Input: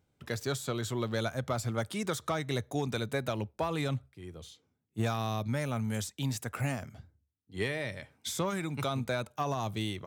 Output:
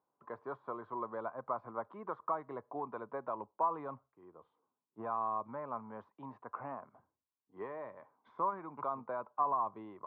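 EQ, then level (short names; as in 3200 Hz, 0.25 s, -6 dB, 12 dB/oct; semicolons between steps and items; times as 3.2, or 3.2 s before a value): HPF 320 Hz 12 dB/oct; ladder low-pass 1100 Hz, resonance 80%; +4.0 dB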